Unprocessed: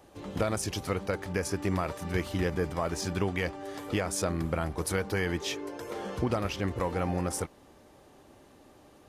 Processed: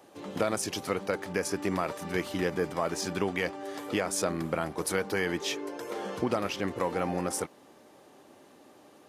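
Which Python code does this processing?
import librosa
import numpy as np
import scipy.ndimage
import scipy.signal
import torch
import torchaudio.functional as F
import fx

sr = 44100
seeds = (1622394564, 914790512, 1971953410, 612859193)

y = scipy.signal.sosfilt(scipy.signal.butter(2, 190.0, 'highpass', fs=sr, output='sos'), x)
y = y * 10.0 ** (1.5 / 20.0)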